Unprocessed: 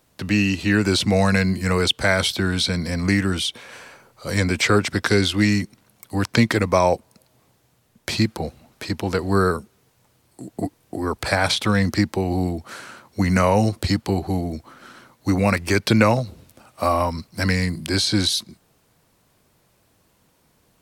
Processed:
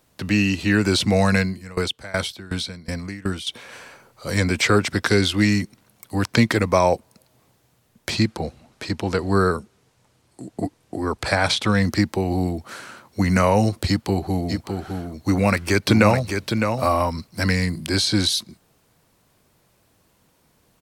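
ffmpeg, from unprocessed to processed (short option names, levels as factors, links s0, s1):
-filter_complex "[0:a]asettb=1/sr,asplit=3[s0][s1][s2];[s0]atrim=end=1.404[s3];[s1]atrim=start=1.4:end=3.47,asetpts=PTS-STARTPTS,afade=t=in:d=0.004:c=qsin,afade=t=out:st=2.066:d=0.004:c=qsin,aeval=exprs='val(0)*pow(10,-22*if(lt(mod(2.7*n/s,1),2*abs(2.7)/1000),1-mod(2.7*n/s,1)/(2*abs(2.7)/1000),(mod(2.7*n/s,1)-2*abs(2.7)/1000)/(1-2*abs(2.7)/1000))/20)':c=same[s4];[s2]atrim=start=3.466[s5];[s3][s4]acrossfade=d=0.004:c1=hsin:c2=qsin[s6];[s6][s5]acrossfade=d=0.004:c1=qsin:c2=hsin,asettb=1/sr,asplit=3[s7][s8][s9];[s7]atrim=end=8.104[s10];[s8]atrim=start=8.1:end=11.77,asetpts=PTS-STARTPTS,afade=t=in:d=0.004:c=qsin,afade=t=out:st=3.666:d=0.004:c=qsin,lowpass=9600[s11];[s9]atrim=start=11.766[s12];[s10][s11]acrossfade=d=0.004:c1=hsin:c2=qsin[s13];[s13][s12]acrossfade=d=0.004:c1=qsin:c2=hsin,asplit=3[s14][s15][s16];[s14]afade=t=out:st=14.48:d=0.02[s17];[s15]aecho=1:1:609:0.501,afade=t=in:st=14.48:d=0.02,afade=t=out:st=17:d=0.02[s18];[s16]afade=t=in:st=17:d=0.02[s19];[s17][s18][s19]amix=inputs=3:normalize=0"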